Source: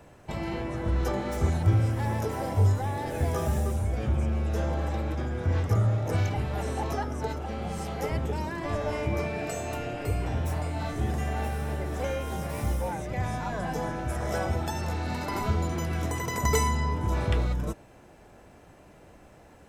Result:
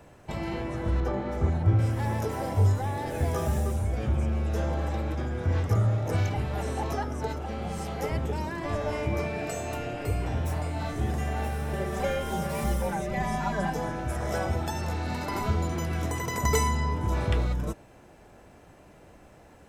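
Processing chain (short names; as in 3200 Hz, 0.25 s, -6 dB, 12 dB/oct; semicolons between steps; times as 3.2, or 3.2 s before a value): 1–1.79 LPF 1600 Hz 6 dB/oct; 11.73–13.7 comb 5.1 ms, depth 97%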